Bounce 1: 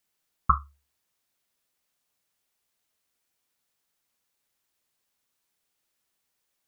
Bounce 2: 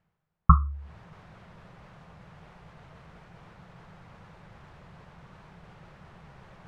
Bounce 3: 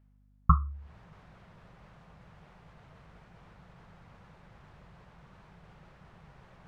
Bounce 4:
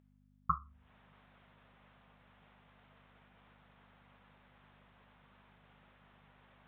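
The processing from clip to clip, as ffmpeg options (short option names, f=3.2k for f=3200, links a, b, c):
-af "lowpass=1.2k,lowshelf=f=210:t=q:w=3:g=7,areverse,acompressor=mode=upward:threshold=-28dB:ratio=2.5,areverse,volume=4dB"
-af "aeval=exprs='val(0)+0.00141*(sin(2*PI*50*n/s)+sin(2*PI*2*50*n/s)/2+sin(2*PI*3*50*n/s)/3+sin(2*PI*4*50*n/s)/4+sin(2*PI*5*50*n/s)/5)':c=same,volume=-5dB"
-af "aresample=8000,aresample=44100,aeval=exprs='val(0)+0.00398*(sin(2*PI*50*n/s)+sin(2*PI*2*50*n/s)/2+sin(2*PI*3*50*n/s)/3+sin(2*PI*4*50*n/s)/4+sin(2*PI*5*50*n/s)/5)':c=same,aemphasis=mode=production:type=riaa,volume=-7dB"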